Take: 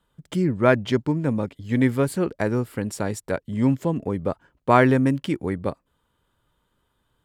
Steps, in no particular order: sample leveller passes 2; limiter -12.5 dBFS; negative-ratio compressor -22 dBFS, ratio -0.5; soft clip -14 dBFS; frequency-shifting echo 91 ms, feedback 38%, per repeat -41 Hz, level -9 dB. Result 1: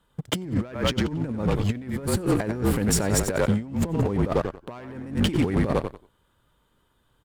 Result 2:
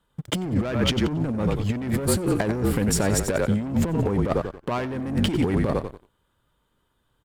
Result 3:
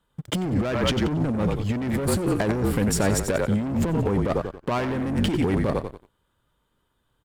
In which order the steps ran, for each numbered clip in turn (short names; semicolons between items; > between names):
frequency-shifting echo > sample leveller > negative-ratio compressor > soft clip > limiter; limiter > soft clip > frequency-shifting echo > sample leveller > negative-ratio compressor; frequency-shifting echo > limiter > sample leveller > soft clip > negative-ratio compressor